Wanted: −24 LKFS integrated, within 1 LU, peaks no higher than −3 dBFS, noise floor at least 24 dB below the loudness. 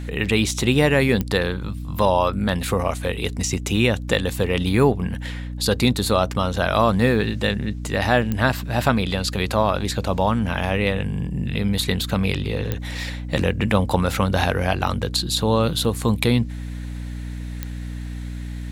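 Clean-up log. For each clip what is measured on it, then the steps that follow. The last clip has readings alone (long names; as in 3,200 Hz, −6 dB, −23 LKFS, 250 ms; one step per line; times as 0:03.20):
number of clicks 4; mains hum 60 Hz; hum harmonics up to 300 Hz; level of the hum −28 dBFS; integrated loudness −21.5 LKFS; sample peak −2.0 dBFS; target loudness −24.0 LKFS
→ click removal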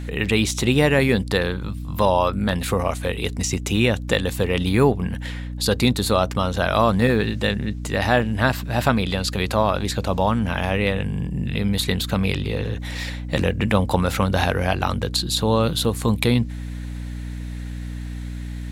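number of clicks 0; mains hum 60 Hz; hum harmonics up to 300 Hz; level of the hum −28 dBFS
→ mains-hum notches 60/120/180/240/300 Hz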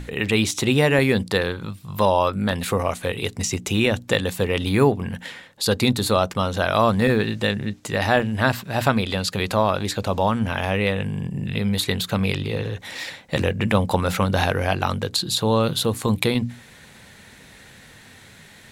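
mains hum none found; integrated loudness −22.0 LKFS; sample peak −3.0 dBFS; target loudness −24.0 LKFS
→ level −2 dB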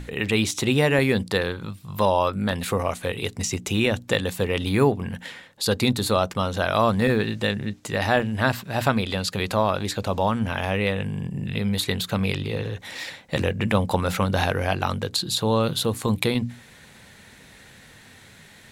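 integrated loudness −24.0 LKFS; sample peak −5.0 dBFS; background noise floor −49 dBFS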